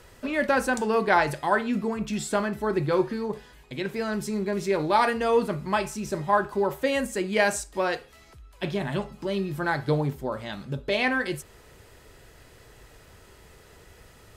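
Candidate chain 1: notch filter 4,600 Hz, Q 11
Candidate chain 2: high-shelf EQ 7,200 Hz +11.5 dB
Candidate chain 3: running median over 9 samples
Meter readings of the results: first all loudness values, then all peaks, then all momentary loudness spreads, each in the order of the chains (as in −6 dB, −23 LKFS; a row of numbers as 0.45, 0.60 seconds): −26.5, −26.0, −27.0 LKFS; −9.0, −8.5, −9.5 dBFS; 10, 11, 10 LU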